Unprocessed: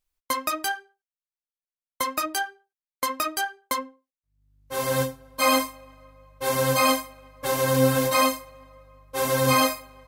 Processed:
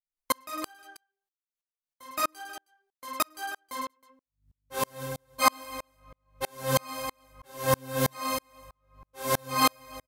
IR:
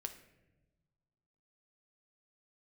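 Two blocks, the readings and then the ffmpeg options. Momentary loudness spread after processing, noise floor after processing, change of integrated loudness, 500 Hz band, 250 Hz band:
15 LU, under -85 dBFS, -6.0 dB, -8.5 dB, -9.0 dB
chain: -af "aecho=1:1:20|52|103.2|185.1|316.2:0.631|0.398|0.251|0.158|0.1,aeval=exprs='val(0)*pow(10,-39*if(lt(mod(-3.1*n/s,1),2*abs(-3.1)/1000),1-mod(-3.1*n/s,1)/(2*abs(-3.1)/1000),(mod(-3.1*n/s,1)-2*abs(-3.1)/1000)/(1-2*abs(-3.1)/1000))/20)':c=same,volume=2dB"

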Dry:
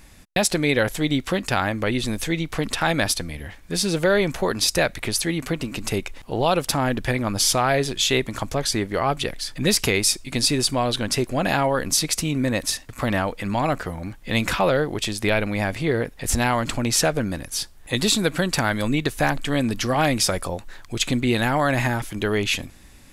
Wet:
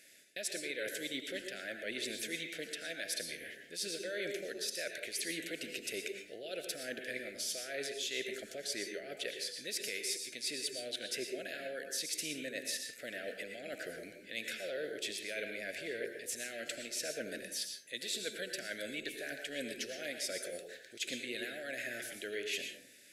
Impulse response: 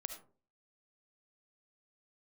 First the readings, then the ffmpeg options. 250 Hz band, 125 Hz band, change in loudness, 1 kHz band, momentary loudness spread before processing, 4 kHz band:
-23.5 dB, -35.0 dB, -17.0 dB, -31.0 dB, 8 LU, -14.5 dB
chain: -filter_complex "[0:a]highpass=530,areverse,acompressor=threshold=-30dB:ratio=6,areverse,asuperstop=centerf=990:order=8:qfactor=1.1[a];[1:a]atrim=start_sample=2205,asetrate=27342,aresample=44100[b];[a][b]afir=irnorm=-1:irlink=0,volume=-5.5dB"

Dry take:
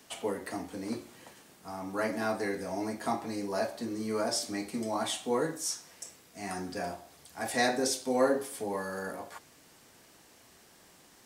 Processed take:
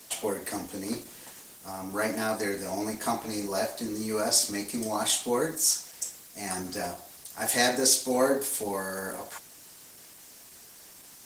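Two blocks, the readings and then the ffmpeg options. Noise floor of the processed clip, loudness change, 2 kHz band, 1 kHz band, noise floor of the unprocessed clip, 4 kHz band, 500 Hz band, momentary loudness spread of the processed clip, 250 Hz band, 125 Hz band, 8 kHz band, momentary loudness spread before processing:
-51 dBFS, +5.0 dB, +3.0 dB, +2.0 dB, -59 dBFS, +7.0 dB, +2.0 dB, 24 LU, +2.0 dB, +2.0 dB, +11.0 dB, 18 LU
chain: -af "crystalizer=i=2.5:c=0,volume=2.5dB" -ar 48000 -c:a libopus -b:a 16k

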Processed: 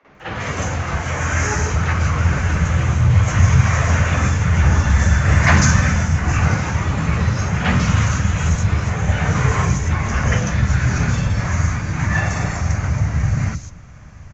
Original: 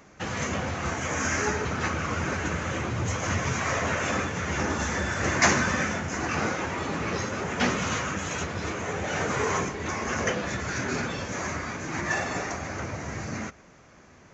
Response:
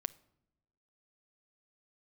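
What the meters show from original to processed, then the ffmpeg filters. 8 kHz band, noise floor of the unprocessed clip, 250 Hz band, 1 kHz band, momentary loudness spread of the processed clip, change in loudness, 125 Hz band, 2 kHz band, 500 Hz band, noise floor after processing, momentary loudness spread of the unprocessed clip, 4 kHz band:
n/a, -53 dBFS, +8.5 dB, +5.5 dB, 7 LU, +10.5 dB, +18.0 dB, +6.0 dB, +2.0 dB, -38 dBFS, 6 LU, +4.0 dB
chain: -filter_complex "[0:a]asubboost=boost=9.5:cutoff=120,acrossover=split=290|4100[a][b][c];[a]adelay=30[d];[c]adelay=150[e];[d][b][e]amix=inputs=3:normalize=0,asplit=2[f][g];[1:a]atrim=start_sample=2205,adelay=48[h];[g][h]afir=irnorm=-1:irlink=0,volume=12dB[i];[f][i]amix=inputs=2:normalize=0,volume=-5dB"

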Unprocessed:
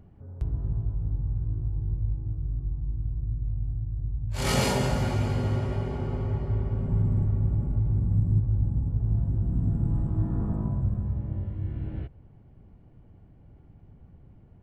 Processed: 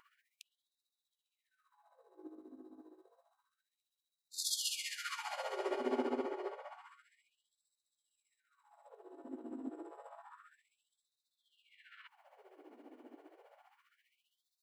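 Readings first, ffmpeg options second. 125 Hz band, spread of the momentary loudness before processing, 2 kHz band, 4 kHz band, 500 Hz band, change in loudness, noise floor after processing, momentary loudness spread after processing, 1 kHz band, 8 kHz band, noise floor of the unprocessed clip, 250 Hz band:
under -40 dB, 8 LU, -8.5 dB, -4.5 dB, -7.5 dB, -11.5 dB, under -85 dBFS, 22 LU, -8.0 dB, -3.0 dB, -53 dBFS, -14.5 dB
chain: -af "acompressor=threshold=-33dB:ratio=6,tremolo=f=15:d=0.67,afftfilt=real='re*gte(b*sr/1024,230*pow(3600/230,0.5+0.5*sin(2*PI*0.29*pts/sr)))':imag='im*gte(b*sr/1024,230*pow(3600/230,0.5+0.5*sin(2*PI*0.29*pts/sr)))':win_size=1024:overlap=0.75,volume=10.5dB"

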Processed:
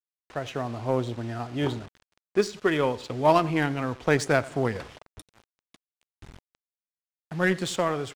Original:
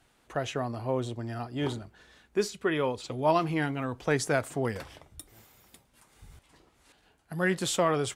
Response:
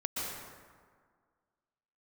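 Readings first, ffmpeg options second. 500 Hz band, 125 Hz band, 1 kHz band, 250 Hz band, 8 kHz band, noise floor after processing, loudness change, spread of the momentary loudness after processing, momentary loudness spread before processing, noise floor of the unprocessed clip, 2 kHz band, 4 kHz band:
+3.5 dB, +3.0 dB, +3.5 dB, +3.5 dB, -2.0 dB, under -85 dBFS, +3.5 dB, 13 LU, 15 LU, -67 dBFS, +4.0 dB, +1.5 dB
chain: -af "dynaudnorm=f=100:g=13:m=5dB,aecho=1:1:92|184|276:0.119|0.0428|0.0154,acrusher=bits=6:mix=0:aa=0.000001,adynamicsmooth=sensitivity=5.5:basefreq=4.3k,aeval=exprs='0.473*(cos(1*acos(clip(val(0)/0.473,-1,1)))-cos(1*PI/2))+0.015*(cos(7*acos(clip(val(0)/0.473,-1,1)))-cos(7*PI/2))':c=same"

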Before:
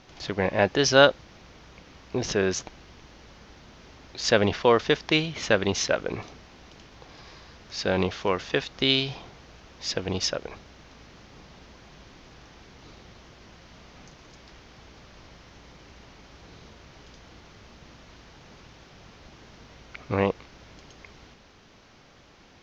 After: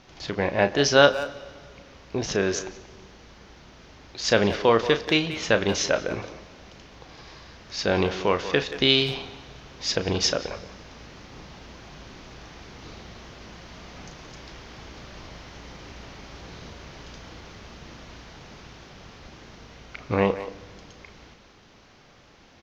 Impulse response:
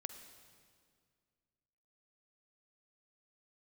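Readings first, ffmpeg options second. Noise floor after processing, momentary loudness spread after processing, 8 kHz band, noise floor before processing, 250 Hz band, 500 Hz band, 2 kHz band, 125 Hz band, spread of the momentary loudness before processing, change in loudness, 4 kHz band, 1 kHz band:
-53 dBFS, 23 LU, n/a, -54 dBFS, +1.5 dB, +1.5 dB, +1.5 dB, +1.0 dB, 14 LU, +1.5 dB, +2.0 dB, +1.5 dB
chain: -filter_complex "[0:a]asplit=2[a][b];[b]adelay=180,highpass=300,lowpass=3.4k,asoftclip=type=hard:threshold=-12dB,volume=-12dB[c];[a][c]amix=inputs=2:normalize=0,asplit=2[d][e];[1:a]atrim=start_sample=2205,adelay=35[f];[e][f]afir=irnorm=-1:irlink=0,volume=-7dB[g];[d][g]amix=inputs=2:normalize=0,dynaudnorm=f=960:g=11:m=11.5dB"

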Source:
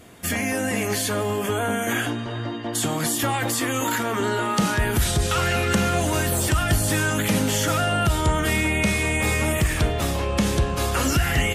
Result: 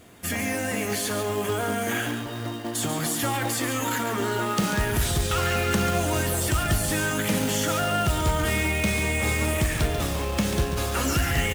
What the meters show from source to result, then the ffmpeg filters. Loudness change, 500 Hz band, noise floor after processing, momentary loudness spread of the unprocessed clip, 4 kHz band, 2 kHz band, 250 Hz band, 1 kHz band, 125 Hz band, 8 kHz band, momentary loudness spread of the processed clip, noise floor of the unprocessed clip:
-2.5 dB, -2.5 dB, -32 dBFS, 4 LU, -2.5 dB, -2.5 dB, -3.0 dB, -2.5 dB, -3.0 dB, -2.5 dB, 4 LU, -29 dBFS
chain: -filter_complex "[0:a]acrusher=bits=3:mode=log:mix=0:aa=0.000001,asplit=2[a][b];[b]aecho=0:1:140:0.376[c];[a][c]amix=inputs=2:normalize=0,volume=-3.5dB"

